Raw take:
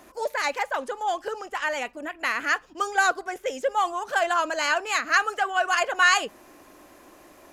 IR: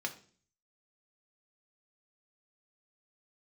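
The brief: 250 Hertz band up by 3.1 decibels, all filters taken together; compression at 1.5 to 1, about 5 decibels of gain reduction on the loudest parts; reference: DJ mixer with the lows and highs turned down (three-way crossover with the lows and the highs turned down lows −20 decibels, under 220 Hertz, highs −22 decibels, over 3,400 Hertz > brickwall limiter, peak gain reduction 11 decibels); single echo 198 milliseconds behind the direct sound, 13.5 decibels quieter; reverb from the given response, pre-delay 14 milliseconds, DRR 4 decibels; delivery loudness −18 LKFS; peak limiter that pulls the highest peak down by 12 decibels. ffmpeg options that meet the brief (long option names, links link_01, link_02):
-filter_complex "[0:a]equalizer=frequency=250:width_type=o:gain=7,acompressor=threshold=-29dB:ratio=1.5,alimiter=level_in=1dB:limit=-24dB:level=0:latency=1,volume=-1dB,aecho=1:1:198:0.211,asplit=2[link_01][link_02];[1:a]atrim=start_sample=2205,adelay=14[link_03];[link_02][link_03]afir=irnorm=-1:irlink=0,volume=-6.5dB[link_04];[link_01][link_04]amix=inputs=2:normalize=0,acrossover=split=220 3400:gain=0.1 1 0.0794[link_05][link_06][link_07];[link_05][link_06][link_07]amix=inputs=3:normalize=0,volume=22dB,alimiter=limit=-9.5dB:level=0:latency=1"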